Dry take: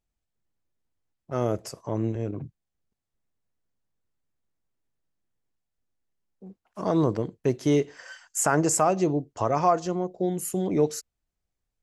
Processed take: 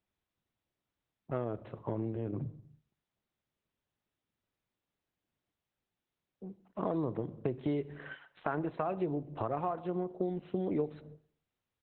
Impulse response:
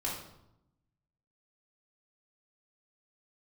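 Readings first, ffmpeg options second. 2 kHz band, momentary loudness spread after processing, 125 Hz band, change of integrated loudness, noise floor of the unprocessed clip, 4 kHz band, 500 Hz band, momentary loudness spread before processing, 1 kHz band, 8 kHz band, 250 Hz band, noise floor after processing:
−11.0 dB, 13 LU, −9.0 dB, −10.5 dB, −84 dBFS, −17.5 dB, −10.0 dB, 12 LU, −11.5 dB, below −40 dB, −9.0 dB, below −85 dBFS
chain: -filter_complex "[0:a]asplit=2[link_01][link_02];[link_02]firequalizer=gain_entry='entry(210,0);entry(2400,-4);entry(9700,-29)':delay=0.05:min_phase=1[link_03];[1:a]atrim=start_sample=2205,afade=type=out:start_time=0.39:duration=0.01,atrim=end_sample=17640[link_04];[link_03][link_04]afir=irnorm=-1:irlink=0,volume=-19.5dB[link_05];[link_01][link_05]amix=inputs=2:normalize=0,acompressor=threshold=-30dB:ratio=6,highpass=frequency=77:width=0.5412,highpass=frequency=77:width=1.3066,aecho=1:1:124|248:0.0708|0.0248,adynamicsmooth=sensitivity=4.5:basefreq=3800" -ar 48000 -c:a libopus -b:a 8k

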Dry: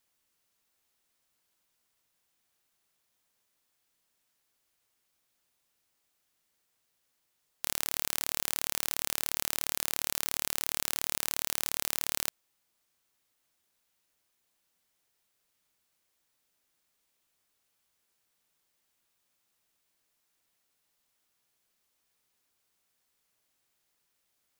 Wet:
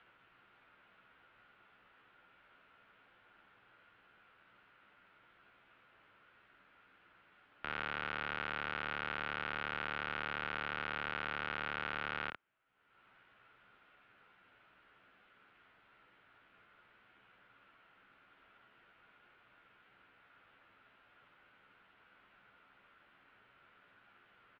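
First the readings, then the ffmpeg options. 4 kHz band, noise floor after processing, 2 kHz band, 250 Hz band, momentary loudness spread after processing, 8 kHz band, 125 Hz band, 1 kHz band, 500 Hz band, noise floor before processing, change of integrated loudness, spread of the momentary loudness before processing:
−9.5 dB, −68 dBFS, +3.5 dB, −1.0 dB, 2 LU, below −40 dB, 0.0 dB, +4.0 dB, 0.0 dB, −78 dBFS, −8.0 dB, 1 LU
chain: -filter_complex "[0:a]equalizer=frequency=1600:width=5.1:gain=11.5,acompressor=mode=upward:threshold=-44dB:ratio=2.5,asplit=2[link_01][link_02];[link_02]aecho=0:1:13|64:0.708|0.562[link_03];[link_01][link_03]amix=inputs=2:normalize=0,highpass=frequency=250:width_type=q:width=0.5412,highpass=frequency=250:width_type=q:width=1.307,lowpass=frequency=3100:width_type=q:width=0.5176,lowpass=frequency=3100:width_type=q:width=0.7071,lowpass=frequency=3100:width_type=q:width=1.932,afreqshift=-190,volume=-3dB"

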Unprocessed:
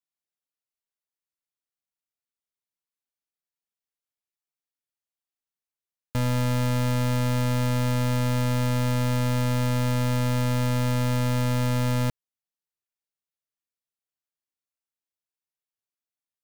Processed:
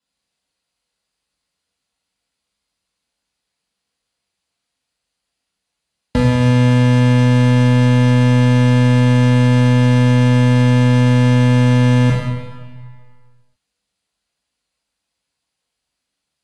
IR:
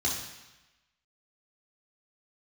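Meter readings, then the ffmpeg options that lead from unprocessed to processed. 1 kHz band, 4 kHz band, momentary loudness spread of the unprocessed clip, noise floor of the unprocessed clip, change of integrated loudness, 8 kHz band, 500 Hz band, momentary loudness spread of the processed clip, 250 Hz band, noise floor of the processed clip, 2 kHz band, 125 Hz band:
+8.5 dB, +8.5 dB, 0 LU, below −85 dBFS, +12.5 dB, can't be measured, +11.0 dB, 3 LU, +14.0 dB, −79 dBFS, +11.5 dB, +12.5 dB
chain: -filter_complex "[0:a]acrossover=split=1100|2300[link_01][link_02][link_03];[link_01]acompressor=threshold=-30dB:ratio=4[link_04];[link_02]acompressor=threshold=-42dB:ratio=4[link_05];[link_03]acompressor=threshold=-52dB:ratio=4[link_06];[link_04][link_05][link_06]amix=inputs=3:normalize=0[link_07];[1:a]atrim=start_sample=2205,asetrate=29988,aresample=44100[link_08];[link_07][link_08]afir=irnorm=-1:irlink=0,volume=7dB" -ar 24000 -c:a aac -b:a 48k

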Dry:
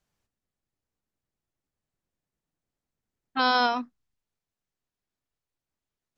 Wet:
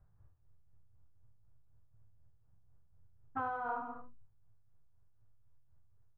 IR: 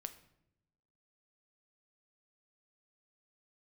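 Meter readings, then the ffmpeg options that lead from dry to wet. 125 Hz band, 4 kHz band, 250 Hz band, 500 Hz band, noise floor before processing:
can't be measured, below −40 dB, −16.5 dB, −13.0 dB, below −85 dBFS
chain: -filter_complex "[0:a]lowpass=frequency=1400:width=0.5412,lowpass=frequency=1400:width=1.3066,lowshelf=frequency=160:width_type=q:width=3:gain=12.5,aecho=1:1:74:0.596,tremolo=f=4:d=0.59[link_01];[1:a]atrim=start_sample=2205,atrim=end_sample=6174,asetrate=28665,aresample=44100[link_02];[link_01][link_02]afir=irnorm=-1:irlink=0,acompressor=threshold=-42dB:ratio=16,asplit=2[link_03][link_04];[link_04]adelay=34,volume=-12dB[link_05];[link_03][link_05]amix=inputs=2:normalize=0,volume=7.5dB"

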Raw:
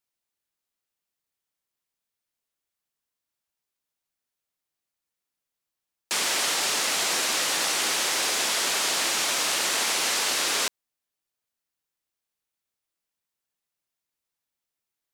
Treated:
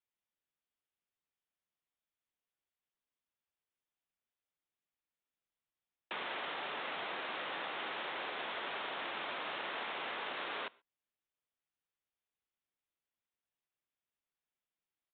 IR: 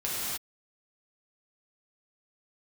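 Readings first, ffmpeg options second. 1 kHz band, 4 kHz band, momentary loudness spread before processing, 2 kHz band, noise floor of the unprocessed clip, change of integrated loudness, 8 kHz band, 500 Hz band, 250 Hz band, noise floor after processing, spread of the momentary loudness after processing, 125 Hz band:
−9.5 dB, −19.0 dB, 1 LU, −12.5 dB, below −85 dBFS, −17.0 dB, below −40 dB, −10.0 dB, −11.5 dB, below −85 dBFS, 1 LU, −12.0 dB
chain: -filter_complex "[0:a]acrossover=split=460|1700[link_01][link_02][link_03];[link_01]acompressor=threshold=-48dB:ratio=4[link_04];[link_02]acompressor=threshold=-34dB:ratio=4[link_05];[link_03]acompressor=threshold=-35dB:ratio=4[link_06];[link_04][link_05][link_06]amix=inputs=3:normalize=0,asplit=2[link_07][link_08];[1:a]atrim=start_sample=2205,atrim=end_sample=6174[link_09];[link_08][link_09]afir=irnorm=-1:irlink=0,volume=-27.5dB[link_10];[link_07][link_10]amix=inputs=2:normalize=0,aresample=8000,aresample=44100,volume=-6.5dB"

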